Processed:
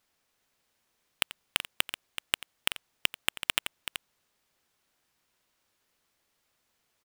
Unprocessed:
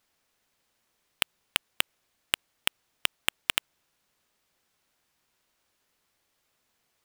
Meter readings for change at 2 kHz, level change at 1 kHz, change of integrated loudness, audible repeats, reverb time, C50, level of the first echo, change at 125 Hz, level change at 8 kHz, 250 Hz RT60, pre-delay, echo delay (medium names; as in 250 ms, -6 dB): -1.0 dB, -1.0 dB, -1.5 dB, 2, no reverb, no reverb, -16.5 dB, -0.5 dB, -1.0 dB, no reverb, no reverb, 88 ms